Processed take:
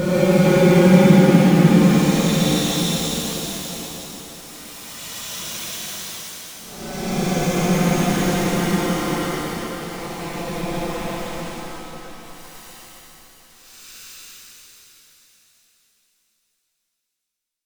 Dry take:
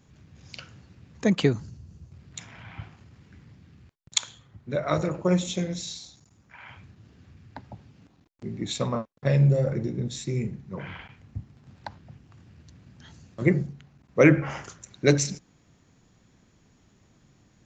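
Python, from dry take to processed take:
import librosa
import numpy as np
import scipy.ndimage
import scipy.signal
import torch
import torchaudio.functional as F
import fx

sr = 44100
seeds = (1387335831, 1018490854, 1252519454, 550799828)

y = np.where(np.abs(x) >= 10.0 ** (-25.5 / 20.0), x, 0.0)
y = fx.paulstretch(y, sr, seeds[0], factor=26.0, window_s=0.05, from_s=5.3)
y = fx.rev_shimmer(y, sr, seeds[1], rt60_s=3.9, semitones=7, shimmer_db=-8, drr_db=-8.0)
y = F.gain(torch.from_numpy(y), -1.5).numpy()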